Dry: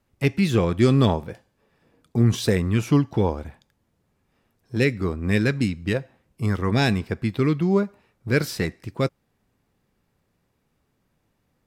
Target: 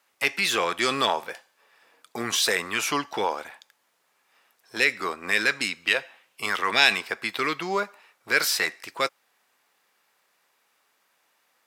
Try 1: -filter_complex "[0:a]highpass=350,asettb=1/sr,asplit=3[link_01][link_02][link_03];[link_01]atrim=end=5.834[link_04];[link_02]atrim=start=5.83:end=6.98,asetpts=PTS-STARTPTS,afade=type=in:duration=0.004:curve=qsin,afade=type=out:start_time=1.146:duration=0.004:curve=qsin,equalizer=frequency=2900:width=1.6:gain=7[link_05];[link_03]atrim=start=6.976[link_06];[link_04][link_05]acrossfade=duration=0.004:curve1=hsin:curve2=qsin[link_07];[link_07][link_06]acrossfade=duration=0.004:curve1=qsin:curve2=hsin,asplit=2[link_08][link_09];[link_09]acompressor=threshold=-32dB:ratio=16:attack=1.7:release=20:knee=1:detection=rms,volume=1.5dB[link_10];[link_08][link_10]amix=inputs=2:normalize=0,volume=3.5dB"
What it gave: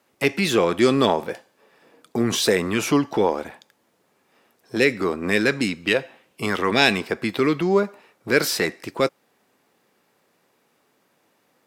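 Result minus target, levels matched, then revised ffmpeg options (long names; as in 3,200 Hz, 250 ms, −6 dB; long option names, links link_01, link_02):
250 Hz band +10.5 dB
-filter_complex "[0:a]highpass=970,asettb=1/sr,asplit=3[link_01][link_02][link_03];[link_01]atrim=end=5.834[link_04];[link_02]atrim=start=5.83:end=6.98,asetpts=PTS-STARTPTS,afade=type=in:duration=0.004:curve=qsin,afade=type=out:start_time=1.146:duration=0.004:curve=qsin,equalizer=frequency=2900:width=1.6:gain=7[link_05];[link_03]atrim=start=6.976[link_06];[link_04][link_05]acrossfade=duration=0.004:curve1=hsin:curve2=qsin[link_07];[link_07][link_06]acrossfade=duration=0.004:curve1=qsin:curve2=hsin,asplit=2[link_08][link_09];[link_09]acompressor=threshold=-32dB:ratio=16:attack=1.7:release=20:knee=1:detection=rms,volume=1.5dB[link_10];[link_08][link_10]amix=inputs=2:normalize=0,volume=3.5dB"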